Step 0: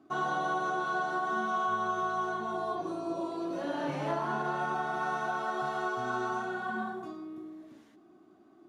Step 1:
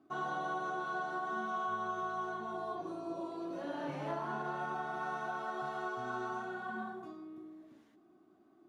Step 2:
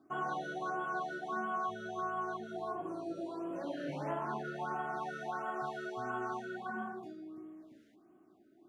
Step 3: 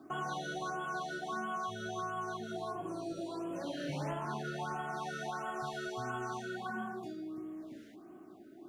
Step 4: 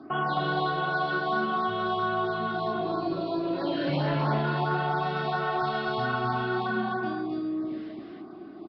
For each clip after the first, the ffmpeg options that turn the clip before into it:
-af "equalizer=f=7200:w=0.57:g=-3,volume=0.501"
-af "afftfilt=real='re*(1-between(b*sr/1024,890*pow(4900/890,0.5+0.5*sin(2*PI*1.5*pts/sr))/1.41,890*pow(4900/890,0.5+0.5*sin(2*PI*1.5*pts/sr))*1.41))':imag='im*(1-between(b*sr/1024,890*pow(4900/890,0.5+0.5*sin(2*PI*1.5*pts/sr))/1.41,890*pow(4900/890,0.5+0.5*sin(2*PI*1.5*pts/sr))*1.41))':win_size=1024:overlap=0.75,volume=1.12"
-filter_complex "[0:a]acrossover=split=130|3000[s0][s1][s2];[s1]acompressor=threshold=0.002:ratio=2.5[s3];[s0][s3][s2]amix=inputs=3:normalize=0,volume=3.35"
-af "aecho=1:1:40.82|265.3:0.316|0.794,aresample=11025,aresample=44100,volume=2.66"

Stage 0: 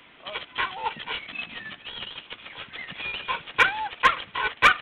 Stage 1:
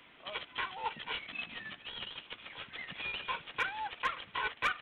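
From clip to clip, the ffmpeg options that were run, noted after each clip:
-af "alimiter=limit=0.141:level=0:latency=1:release=274,volume=0.473"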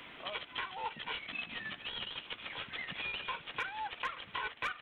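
-af "acompressor=threshold=0.00355:ratio=2.5,volume=2.51"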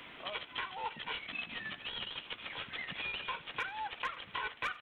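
-af "aecho=1:1:87:0.0708"

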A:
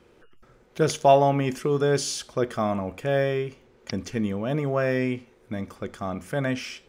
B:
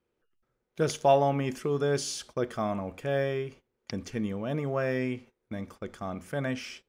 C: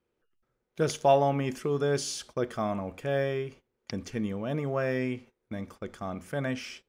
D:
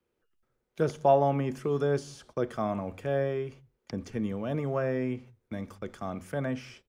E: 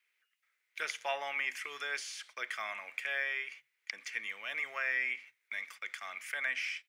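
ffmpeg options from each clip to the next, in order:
-af "agate=range=0.126:threshold=0.00708:ratio=16:detection=peak,volume=0.562"
-af anull
-filter_complex "[0:a]acrossover=split=120|600|1500[s0][s1][s2][s3];[s0]aecho=1:1:165:0.422[s4];[s3]acompressor=threshold=0.00398:ratio=6[s5];[s4][s1][s2][s5]amix=inputs=4:normalize=0"
-af "highpass=f=2100:t=q:w=4.5,volume=1.5"

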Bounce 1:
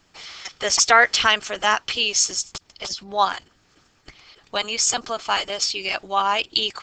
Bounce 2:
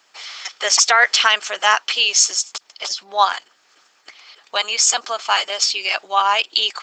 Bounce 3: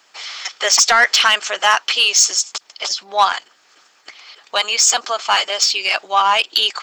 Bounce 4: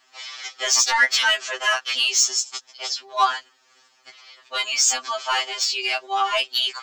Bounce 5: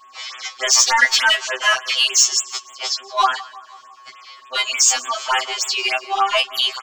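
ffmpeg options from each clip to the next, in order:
-af "highpass=650,alimiter=level_in=2:limit=0.891:release=50:level=0:latency=1,volume=0.891"
-af "acontrast=51,volume=0.75"
-af "afftfilt=real='re*2.45*eq(mod(b,6),0)':imag='im*2.45*eq(mod(b,6),0)':win_size=2048:overlap=0.75,volume=0.668"
-af "aeval=exprs='val(0)+0.00398*sin(2*PI*1100*n/s)':c=same,aecho=1:1:170|340|510|680:0.0944|0.0529|0.0296|0.0166,afftfilt=real='re*(1-between(b*sr/1024,220*pow(5200/220,0.5+0.5*sin(2*PI*3.4*pts/sr))/1.41,220*pow(5200/220,0.5+0.5*sin(2*PI*3.4*pts/sr))*1.41))':imag='im*(1-between(b*sr/1024,220*pow(5200/220,0.5+0.5*sin(2*PI*3.4*pts/sr))/1.41,220*pow(5200/220,0.5+0.5*sin(2*PI*3.4*pts/sr))*1.41))':win_size=1024:overlap=0.75,volume=1.68"

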